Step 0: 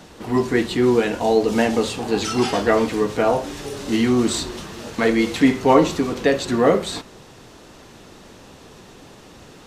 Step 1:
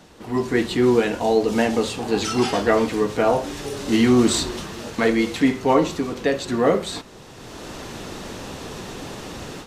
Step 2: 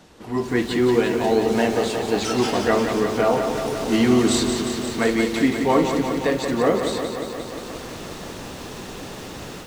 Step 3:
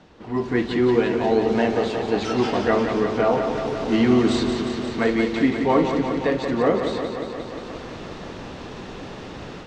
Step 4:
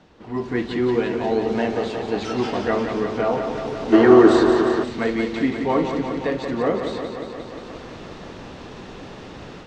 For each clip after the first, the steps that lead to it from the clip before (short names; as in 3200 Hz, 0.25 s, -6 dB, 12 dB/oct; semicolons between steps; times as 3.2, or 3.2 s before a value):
AGC gain up to 15 dB; gain -5 dB
lo-fi delay 0.177 s, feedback 80%, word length 7-bit, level -7 dB; gain -1.5 dB
air absorption 150 m
spectral gain 3.93–4.83, 300–1900 Hz +12 dB; gain -2 dB